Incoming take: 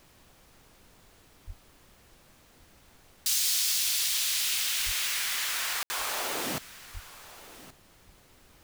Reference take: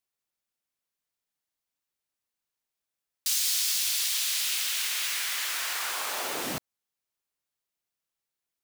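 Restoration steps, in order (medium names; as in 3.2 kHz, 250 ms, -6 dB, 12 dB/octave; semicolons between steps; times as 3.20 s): 1.46–1.58 s: high-pass 140 Hz 24 dB/octave; 4.85–4.97 s: high-pass 140 Hz 24 dB/octave; 6.93–7.05 s: high-pass 140 Hz 24 dB/octave; room tone fill 5.83–5.90 s; noise print and reduce 29 dB; inverse comb 1124 ms -17 dB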